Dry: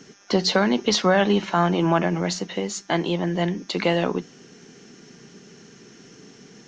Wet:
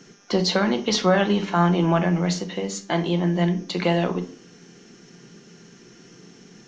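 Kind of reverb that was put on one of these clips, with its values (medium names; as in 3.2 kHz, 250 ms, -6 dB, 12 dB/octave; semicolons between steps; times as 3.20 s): simulated room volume 430 m³, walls furnished, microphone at 0.86 m; trim -2 dB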